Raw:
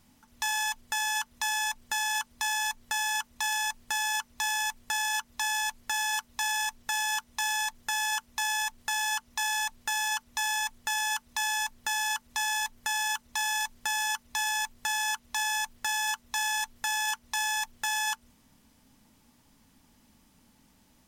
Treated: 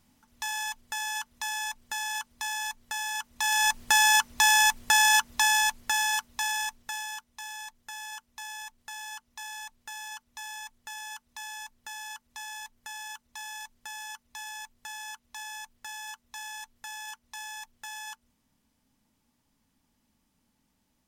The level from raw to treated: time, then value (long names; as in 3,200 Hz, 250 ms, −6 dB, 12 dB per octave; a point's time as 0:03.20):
0:03.15 −3.5 dB
0:03.78 +9 dB
0:05.14 +9 dB
0:06.67 −1.5 dB
0:07.31 −11 dB